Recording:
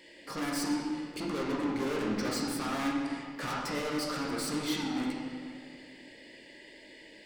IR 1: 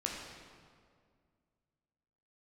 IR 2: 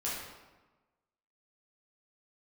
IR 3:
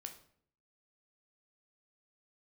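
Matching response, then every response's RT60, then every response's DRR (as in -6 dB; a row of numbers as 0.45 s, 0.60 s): 1; 2.1 s, 1.2 s, 0.60 s; -2.0 dB, -7.5 dB, 4.5 dB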